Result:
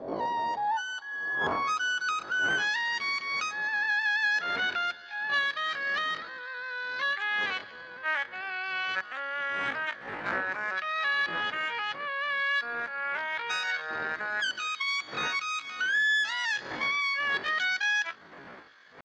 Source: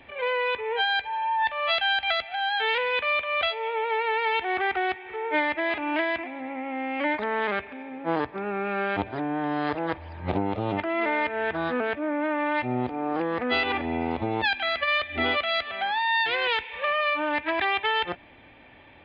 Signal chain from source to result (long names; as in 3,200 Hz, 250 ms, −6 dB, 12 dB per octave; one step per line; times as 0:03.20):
wind on the microphone 190 Hz −28 dBFS
band-pass filter sweep 350 Hz → 960 Hz, 0:00.14–0:02.80
pitch shifter +11 semitones
level +2.5 dB